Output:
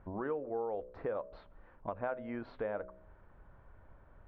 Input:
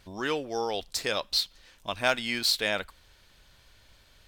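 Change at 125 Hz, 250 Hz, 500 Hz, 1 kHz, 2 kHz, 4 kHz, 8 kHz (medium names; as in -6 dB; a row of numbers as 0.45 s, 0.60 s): -4.5 dB, -5.5 dB, -5.0 dB, -8.5 dB, -18.0 dB, under -40 dB, under -40 dB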